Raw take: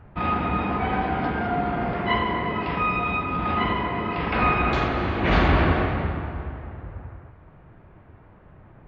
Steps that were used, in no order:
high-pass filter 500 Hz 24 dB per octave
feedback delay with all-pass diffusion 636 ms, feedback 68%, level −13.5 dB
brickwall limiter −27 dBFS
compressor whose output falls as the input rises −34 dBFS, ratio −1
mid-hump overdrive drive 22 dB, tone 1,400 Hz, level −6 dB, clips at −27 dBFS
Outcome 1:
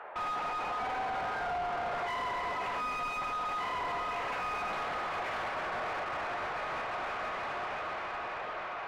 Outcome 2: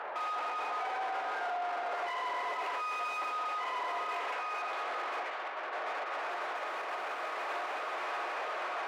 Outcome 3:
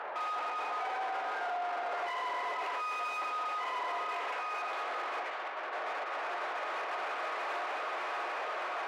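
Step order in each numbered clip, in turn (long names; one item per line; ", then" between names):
feedback delay with all-pass diffusion, then brickwall limiter, then compressor whose output falls as the input rises, then high-pass filter, then mid-hump overdrive
feedback delay with all-pass diffusion, then compressor whose output falls as the input rises, then mid-hump overdrive, then brickwall limiter, then high-pass filter
feedback delay with all-pass diffusion, then compressor whose output falls as the input rises, then brickwall limiter, then mid-hump overdrive, then high-pass filter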